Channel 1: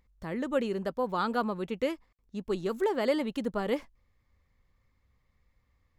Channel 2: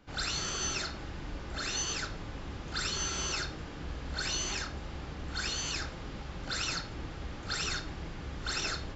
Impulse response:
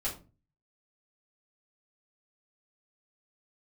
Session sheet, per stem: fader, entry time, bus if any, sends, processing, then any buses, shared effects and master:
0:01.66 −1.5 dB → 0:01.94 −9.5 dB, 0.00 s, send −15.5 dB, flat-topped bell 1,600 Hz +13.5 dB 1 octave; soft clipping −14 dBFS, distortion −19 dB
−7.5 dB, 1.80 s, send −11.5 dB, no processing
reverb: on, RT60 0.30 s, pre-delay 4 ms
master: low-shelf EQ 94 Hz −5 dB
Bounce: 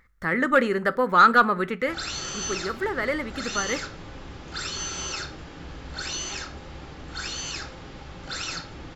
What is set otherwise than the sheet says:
stem 1 −1.5 dB → +6.5 dB
stem 2 −7.5 dB → +0.5 dB

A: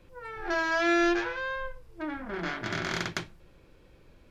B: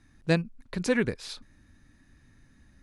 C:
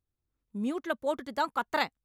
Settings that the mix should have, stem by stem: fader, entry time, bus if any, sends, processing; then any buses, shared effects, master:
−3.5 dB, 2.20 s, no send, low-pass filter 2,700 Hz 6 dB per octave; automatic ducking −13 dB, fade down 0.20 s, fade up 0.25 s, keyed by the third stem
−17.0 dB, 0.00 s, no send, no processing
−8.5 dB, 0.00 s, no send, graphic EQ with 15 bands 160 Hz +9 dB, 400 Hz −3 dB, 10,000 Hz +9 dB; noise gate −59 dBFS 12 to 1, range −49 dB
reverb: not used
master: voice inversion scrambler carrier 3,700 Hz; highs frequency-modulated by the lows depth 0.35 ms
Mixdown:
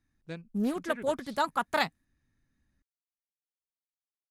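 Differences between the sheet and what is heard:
stem A: muted
stem C −8.5 dB → +1.0 dB
master: missing voice inversion scrambler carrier 3,700 Hz

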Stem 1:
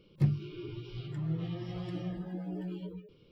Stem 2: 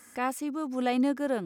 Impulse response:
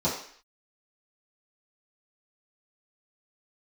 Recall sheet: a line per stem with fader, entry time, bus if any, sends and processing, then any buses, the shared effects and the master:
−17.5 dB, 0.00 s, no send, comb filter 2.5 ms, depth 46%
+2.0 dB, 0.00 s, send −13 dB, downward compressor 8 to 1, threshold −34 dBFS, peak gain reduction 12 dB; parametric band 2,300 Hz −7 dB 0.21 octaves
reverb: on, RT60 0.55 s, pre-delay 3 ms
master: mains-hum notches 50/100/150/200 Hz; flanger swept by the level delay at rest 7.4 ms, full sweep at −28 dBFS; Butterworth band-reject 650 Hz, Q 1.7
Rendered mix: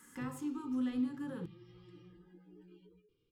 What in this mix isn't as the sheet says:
stem 2 +2.0 dB → −6.0 dB
master: missing flanger swept by the level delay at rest 7.4 ms, full sweep at −28 dBFS

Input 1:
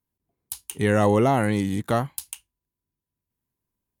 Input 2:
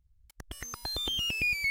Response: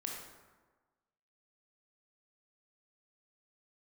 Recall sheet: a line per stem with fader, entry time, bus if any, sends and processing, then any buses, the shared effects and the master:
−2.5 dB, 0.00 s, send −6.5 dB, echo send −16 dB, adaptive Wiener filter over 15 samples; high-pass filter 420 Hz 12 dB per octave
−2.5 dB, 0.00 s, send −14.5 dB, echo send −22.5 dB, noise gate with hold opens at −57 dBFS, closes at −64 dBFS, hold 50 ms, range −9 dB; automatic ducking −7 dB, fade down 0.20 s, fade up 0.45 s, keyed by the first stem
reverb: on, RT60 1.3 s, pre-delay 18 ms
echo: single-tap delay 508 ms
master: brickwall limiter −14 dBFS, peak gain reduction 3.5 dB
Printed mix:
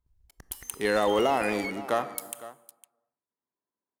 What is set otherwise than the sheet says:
as on the sheet

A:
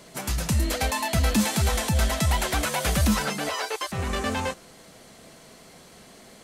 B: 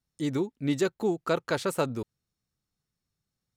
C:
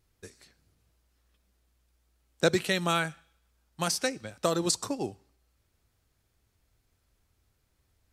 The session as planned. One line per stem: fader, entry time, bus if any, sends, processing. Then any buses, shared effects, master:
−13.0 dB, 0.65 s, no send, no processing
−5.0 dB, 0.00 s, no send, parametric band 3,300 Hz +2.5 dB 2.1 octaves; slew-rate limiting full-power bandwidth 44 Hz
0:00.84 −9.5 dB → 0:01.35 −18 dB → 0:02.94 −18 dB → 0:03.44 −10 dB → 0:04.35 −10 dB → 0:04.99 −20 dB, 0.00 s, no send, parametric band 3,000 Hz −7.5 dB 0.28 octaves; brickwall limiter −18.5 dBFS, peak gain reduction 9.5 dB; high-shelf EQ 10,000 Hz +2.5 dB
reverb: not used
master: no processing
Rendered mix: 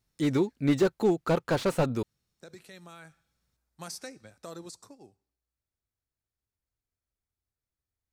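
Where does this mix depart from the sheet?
stem A: muted
stem B −5.0 dB → +3.0 dB

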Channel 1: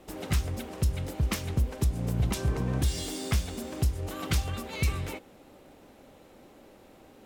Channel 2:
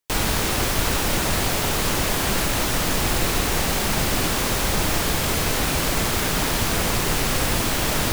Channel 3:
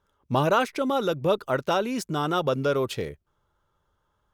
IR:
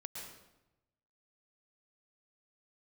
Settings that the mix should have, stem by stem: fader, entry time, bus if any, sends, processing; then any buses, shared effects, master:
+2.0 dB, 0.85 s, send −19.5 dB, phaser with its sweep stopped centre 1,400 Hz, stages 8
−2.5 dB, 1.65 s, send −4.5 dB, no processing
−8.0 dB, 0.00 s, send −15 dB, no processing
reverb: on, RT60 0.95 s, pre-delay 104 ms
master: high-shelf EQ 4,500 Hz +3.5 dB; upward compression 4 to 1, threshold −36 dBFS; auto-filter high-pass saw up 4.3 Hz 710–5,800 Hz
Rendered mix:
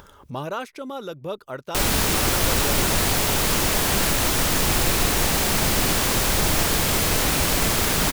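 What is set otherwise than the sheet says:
stem 1: muted
stem 3: send off
master: missing auto-filter high-pass saw up 4.3 Hz 710–5,800 Hz

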